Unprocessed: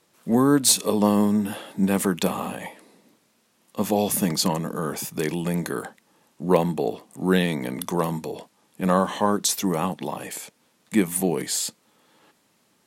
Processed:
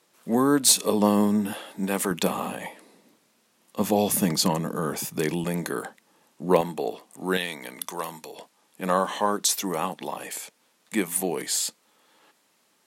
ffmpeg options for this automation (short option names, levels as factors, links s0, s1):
-af "asetnsamples=n=441:p=0,asendcmd='0.8 highpass f 140;1.53 highpass f 430;2.11 highpass f 160;3.8 highpass f 59;5.44 highpass f 210;6.61 highpass f 520;7.37 highpass f 1400;8.38 highpass f 460',highpass=f=280:p=1"